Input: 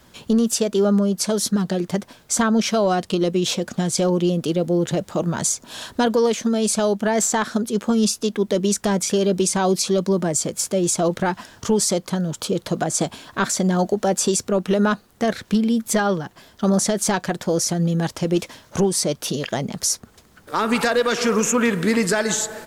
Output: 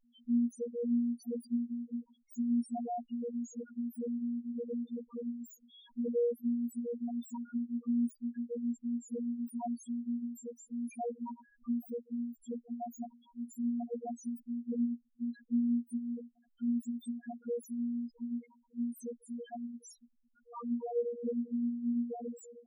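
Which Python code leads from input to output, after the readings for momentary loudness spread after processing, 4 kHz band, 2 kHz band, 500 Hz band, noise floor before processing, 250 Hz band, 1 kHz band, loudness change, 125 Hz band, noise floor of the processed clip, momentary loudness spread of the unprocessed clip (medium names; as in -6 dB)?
12 LU, under -35 dB, under -35 dB, -19.5 dB, -53 dBFS, -12.5 dB, -21.5 dB, -16.5 dB, under -30 dB, -72 dBFS, 6 LU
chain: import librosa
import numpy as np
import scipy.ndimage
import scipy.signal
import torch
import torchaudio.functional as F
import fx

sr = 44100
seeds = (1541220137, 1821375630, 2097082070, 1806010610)

y = fx.self_delay(x, sr, depth_ms=0.35)
y = fx.robotise(y, sr, hz=238.0)
y = fx.spec_topn(y, sr, count=1)
y = y * 10.0 ** (-7.0 / 20.0)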